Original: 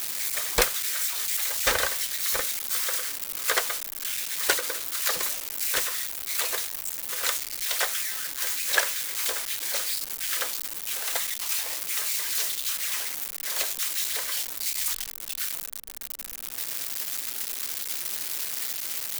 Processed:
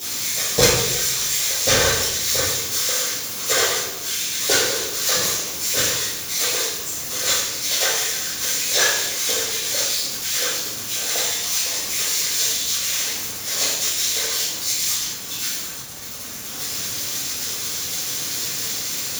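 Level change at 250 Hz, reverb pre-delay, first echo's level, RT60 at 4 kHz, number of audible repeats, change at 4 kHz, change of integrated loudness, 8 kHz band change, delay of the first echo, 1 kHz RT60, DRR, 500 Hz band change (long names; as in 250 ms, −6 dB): +13.5 dB, 3 ms, no echo audible, 0.75 s, no echo audible, +10.0 dB, +6.5 dB, +9.5 dB, no echo audible, 0.95 s, −9.5 dB, +10.5 dB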